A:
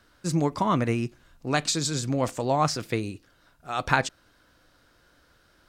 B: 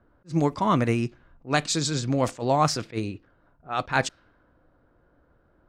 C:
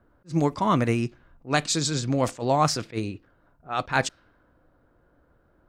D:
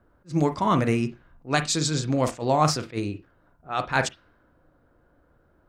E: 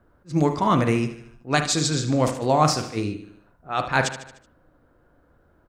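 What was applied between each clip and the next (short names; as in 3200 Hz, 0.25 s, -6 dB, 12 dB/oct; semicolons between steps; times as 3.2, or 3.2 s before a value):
low-pass opened by the level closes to 840 Hz, open at -20.5 dBFS; attack slew limiter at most 310 dB/s; gain +2 dB
high shelf 8100 Hz +3.5 dB
reverb, pre-delay 39 ms, DRR 9.5 dB
feedback echo 75 ms, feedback 52%, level -12 dB; gain +2 dB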